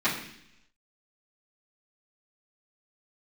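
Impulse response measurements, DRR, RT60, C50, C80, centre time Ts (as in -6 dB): -13.5 dB, 0.70 s, 6.0 dB, 9.0 dB, 32 ms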